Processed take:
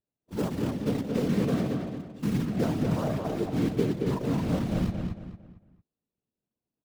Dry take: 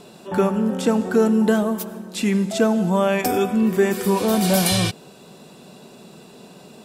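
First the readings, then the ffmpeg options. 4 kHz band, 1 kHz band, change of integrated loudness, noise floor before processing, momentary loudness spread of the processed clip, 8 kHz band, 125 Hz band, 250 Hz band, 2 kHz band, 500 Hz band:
-16.0 dB, -13.5 dB, -9.0 dB, -46 dBFS, 8 LU, -20.0 dB, -2.5 dB, -8.0 dB, -14.5 dB, -11.5 dB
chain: -filter_complex "[0:a]agate=range=0.0794:threshold=0.0224:ratio=16:detection=peak,aemphasis=mode=reproduction:type=bsi,afwtdn=0.126,acrusher=bits=3:mode=log:mix=0:aa=0.000001,afftfilt=real='hypot(re,im)*cos(2*PI*random(0))':imag='hypot(re,im)*sin(2*PI*random(1))':win_size=512:overlap=0.75,asplit=2[s0][s1];[s1]adelay=226,lowpass=f=3000:p=1,volume=0.631,asplit=2[s2][s3];[s3]adelay=226,lowpass=f=3000:p=1,volume=0.35,asplit=2[s4][s5];[s5]adelay=226,lowpass=f=3000:p=1,volume=0.35,asplit=2[s6][s7];[s7]adelay=226,lowpass=f=3000:p=1,volume=0.35[s8];[s2][s4][s6][s8]amix=inputs=4:normalize=0[s9];[s0][s9]amix=inputs=2:normalize=0,adynamicequalizer=threshold=0.00398:dfrequency=6000:dqfactor=0.7:tfrequency=6000:tqfactor=0.7:attack=5:release=100:ratio=0.375:range=3:mode=cutabove:tftype=highshelf,volume=0.376"

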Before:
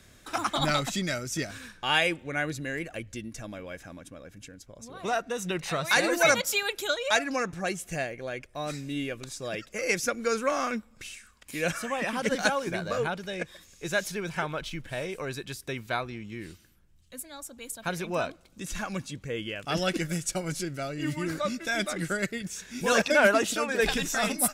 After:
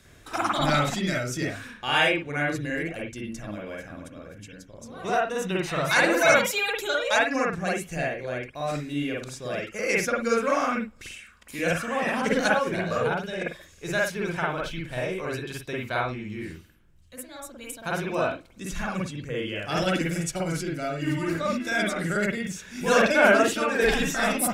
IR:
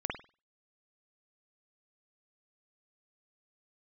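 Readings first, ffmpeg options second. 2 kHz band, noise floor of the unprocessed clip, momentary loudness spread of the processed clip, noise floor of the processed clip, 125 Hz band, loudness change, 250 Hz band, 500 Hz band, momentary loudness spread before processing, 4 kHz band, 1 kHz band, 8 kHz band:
+3.5 dB, -58 dBFS, 16 LU, -52 dBFS, +4.0 dB, +3.5 dB, +4.5 dB, +4.0 dB, 17 LU, +0.5 dB, +4.0 dB, -1.0 dB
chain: -filter_complex "[1:a]atrim=start_sample=2205,afade=t=out:st=0.18:d=0.01,atrim=end_sample=8379[s0];[0:a][s0]afir=irnorm=-1:irlink=0"

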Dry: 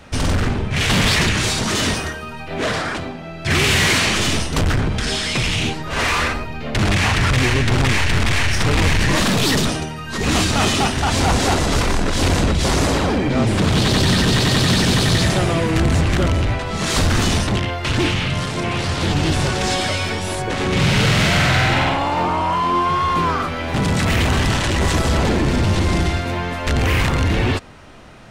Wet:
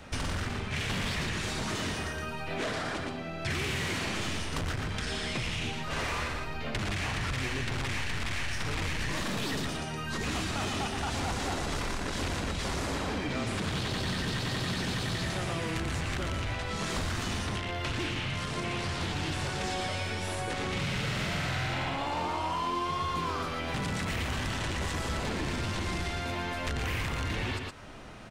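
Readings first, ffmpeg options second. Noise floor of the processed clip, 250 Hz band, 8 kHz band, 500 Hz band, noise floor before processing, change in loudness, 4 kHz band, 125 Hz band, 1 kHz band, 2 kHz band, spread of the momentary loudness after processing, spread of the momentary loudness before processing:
-36 dBFS, -15.5 dB, -15.5 dB, -14.5 dB, -30 dBFS, -14.5 dB, -14.5 dB, -15.5 dB, -13.5 dB, -13.5 dB, 3 LU, 7 LU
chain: -filter_complex "[0:a]aecho=1:1:117:0.422,acrossover=split=930|2700[s0][s1][s2];[s0]acompressor=threshold=0.0355:ratio=4[s3];[s1]acompressor=threshold=0.02:ratio=4[s4];[s2]acompressor=threshold=0.0141:ratio=4[s5];[s3][s4][s5]amix=inputs=3:normalize=0,volume=0.562"

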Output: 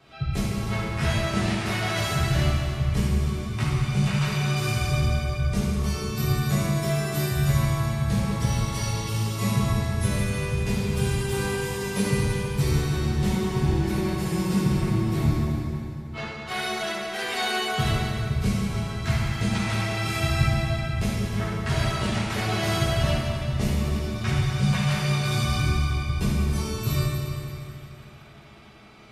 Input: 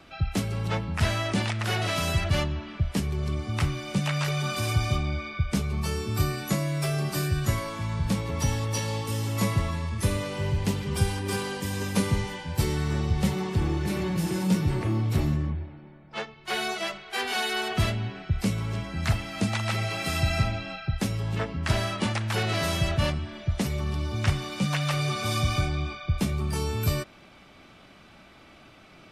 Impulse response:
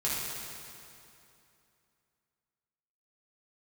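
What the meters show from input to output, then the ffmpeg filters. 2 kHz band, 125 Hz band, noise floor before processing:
+2.0 dB, +3.0 dB, -52 dBFS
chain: -filter_complex "[1:a]atrim=start_sample=2205[s0];[0:a][s0]afir=irnorm=-1:irlink=0,volume=0.501"

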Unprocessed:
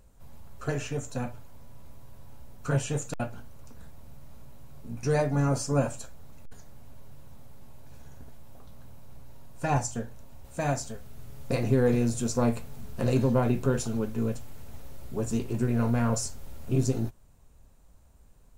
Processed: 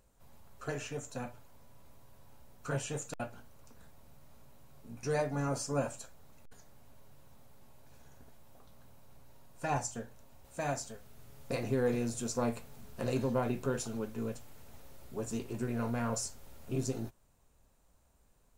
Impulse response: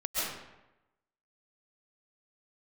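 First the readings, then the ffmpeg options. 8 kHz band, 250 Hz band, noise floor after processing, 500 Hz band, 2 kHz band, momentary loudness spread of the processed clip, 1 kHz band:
-4.5 dB, -8.5 dB, -67 dBFS, -6.0 dB, -4.5 dB, 14 LU, -5.0 dB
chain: -af "lowshelf=f=220:g=-8.5,volume=0.596"

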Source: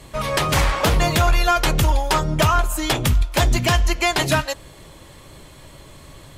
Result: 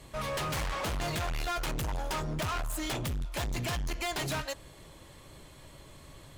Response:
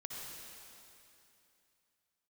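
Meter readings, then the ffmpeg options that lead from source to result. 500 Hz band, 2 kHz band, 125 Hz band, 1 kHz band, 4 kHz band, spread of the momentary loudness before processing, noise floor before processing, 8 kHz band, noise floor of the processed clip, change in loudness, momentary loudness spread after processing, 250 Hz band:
-14.5 dB, -14.5 dB, -15.0 dB, -15.0 dB, -14.0 dB, 4 LU, -44 dBFS, -13.0 dB, -53 dBFS, -14.5 dB, 19 LU, -13.5 dB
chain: -af "asoftclip=type=hard:threshold=0.075,volume=0.376"

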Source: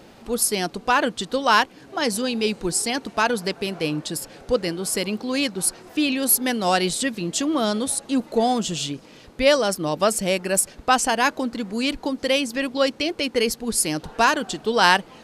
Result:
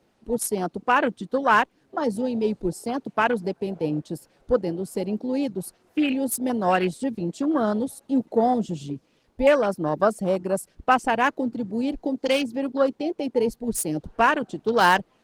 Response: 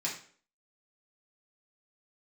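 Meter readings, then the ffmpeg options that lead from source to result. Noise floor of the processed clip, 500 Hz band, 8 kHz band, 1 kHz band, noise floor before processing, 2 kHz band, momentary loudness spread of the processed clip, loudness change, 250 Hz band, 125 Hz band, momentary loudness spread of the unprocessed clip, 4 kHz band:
-65 dBFS, 0.0 dB, -11.5 dB, -0.5 dB, -48 dBFS, -3.0 dB, 9 LU, -2.0 dB, 0.0 dB, 0.0 dB, 8 LU, -11.0 dB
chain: -filter_complex "[0:a]afwtdn=0.0562,acrossover=split=130|1500[s0][s1][s2];[s2]asoftclip=type=hard:threshold=0.0944[s3];[s0][s1][s3]amix=inputs=3:normalize=0" -ar 48000 -c:a libopus -b:a 20k

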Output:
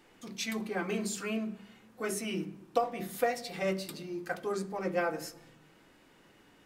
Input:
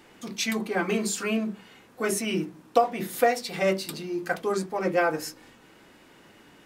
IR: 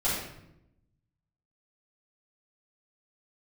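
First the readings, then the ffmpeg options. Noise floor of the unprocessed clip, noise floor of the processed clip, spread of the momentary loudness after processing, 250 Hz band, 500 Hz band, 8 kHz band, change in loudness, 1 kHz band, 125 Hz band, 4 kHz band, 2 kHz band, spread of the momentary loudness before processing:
-55 dBFS, -62 dBFS, 8 LU, -6.5 dB, -7.5 dB, -8.0 dB, -7.5 dB, -8.5 dB, -5.5 dB, -7.5 dB, -8.0 dB, 8 LU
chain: -filter_complex "[0:a]asplit=2[s0][s1];[1:a]atrim=start_sample=2205,asetrate=41013,aresample=44100,lowshelf=f=210:g=10.5[s2];[s1][s2]afir=irnorm=-1:irlink=0,volume=0.0531[s3];[s0][s3]amix=inputs=2:normalize=0,volume=0.398"

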